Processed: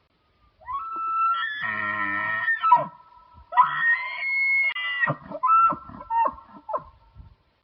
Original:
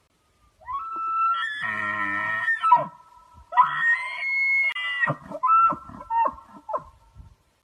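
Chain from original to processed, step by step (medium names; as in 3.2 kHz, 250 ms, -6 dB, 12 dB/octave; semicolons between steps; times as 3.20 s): resampled via 11.025 kHz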